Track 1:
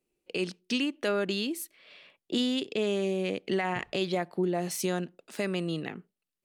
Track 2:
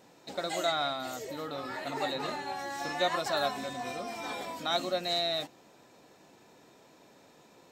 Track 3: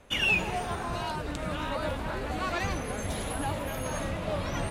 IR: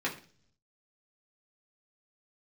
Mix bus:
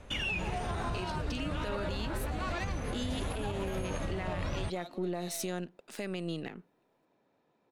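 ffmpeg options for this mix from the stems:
-filter_complex "[0:a]aeval=exprs='if(lt(val(0),0),0.708*val(0),val(0))':channel_layout=same,adelay=600,volume=0dB[link_01];[1:a]adynamicsmooth=sensitivity=3:basefreq=2900,adelay=100,volume=-14dB[link_02];[2:a]lowpass=9600,lowshelf=frequency=140:gain=9,volume=1.5dB[link_03];[link_01][link_02][link_03]amix=inputs=3:normalize=0,alimiter=level_in=1.5dB:limit=-24dB:level=0:latency=1:release=194,volume=-1.5dB"

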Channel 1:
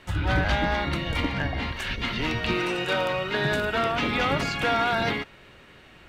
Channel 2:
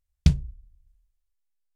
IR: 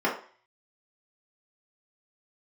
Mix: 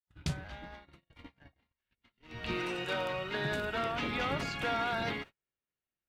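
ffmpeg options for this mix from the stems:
-filter_complex "[0:a]acrusher=bits=11:mix=0:aa=0.000001,volume=-9dB,afade=type=in:start_time=2.28:duration=0.26:silence=0.223872[link_01];[1:a]highpass=frequency=530:poles=1,alimiter=limit=-21.5dB:level=0:latency=1:release=29,volume=1.5dB[link_02];[link_01][link_02]amix=inputs=2:normalize=0,agate=range=-38dB:threshold=-46dB:ratio=16:detection=peak"

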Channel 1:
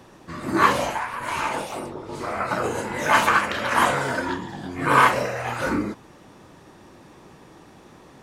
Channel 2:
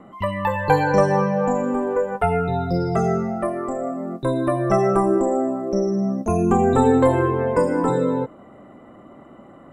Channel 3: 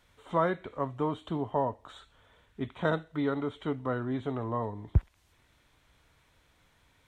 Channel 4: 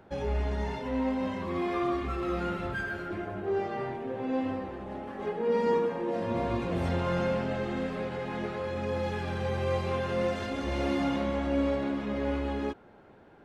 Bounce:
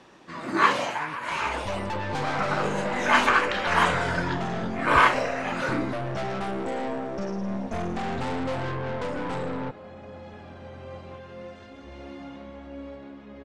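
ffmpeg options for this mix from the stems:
ffmpeg -i stem1.wav -i stem2.wav -i stem3.wav -i stem4.wav -filter_complex "[0:a]highpass=160,equalizer=frequency=2600:width=0.62:gain=4.5,volume=-4.5dB[link_01];[1:a]aecho=1:1:1.3:0.47,aeval=exprs='(tanh(22.4*val(0)+0.55)-tanh(0.55))/22.4':channel_layout=same,adelay=1450,volume=-1.5dB[link_02];[2:a]aphaser=in_gain=1:out_gain=1:delay=1.7:decay=0.77:speed=0.86:type=triangular,volume=-17.5dB[link_03];[3:a]adelay=1200,volume=-12dB[link_04];[link_01][link_02][link_03][link_04]amix=inputs=4:normalize=0,lowpass=7300" out.wav

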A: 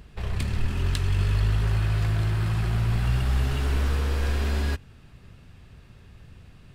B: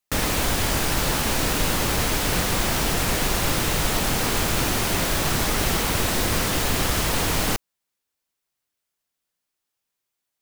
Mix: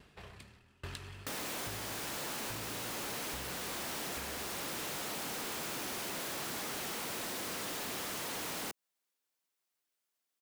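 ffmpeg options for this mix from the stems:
ffmpeg -i stem1.wav -i stem2.wav -filter_complex "[0:a]asoftclip=type=tanh:threshold=-14dB,highpass=frequency=350:poles=1,aeval=exprs='val(0)*pow(10,-32*if(lt(mod(1.2*n/s,1),2*abs(1.2)/1000),1-mod(1.2*n/s,1)/(2*abs(1.2)/1000),(mod(1.2*n/s,1)-2*abs(1.2)/1000)/(1-2*abs(1.2)/1000))/20)':channel_layout=same,volume=-1.5dB[link_01];[1:a]highpass=220,asoftclip=type=hard:threshold=-28dB,adelay=1150,volume=-4dB[link_02];[link_01][link_02]amix=inputs=2:normalize=0,acompressor=threshold=-40dB:ratio=4" out.wav

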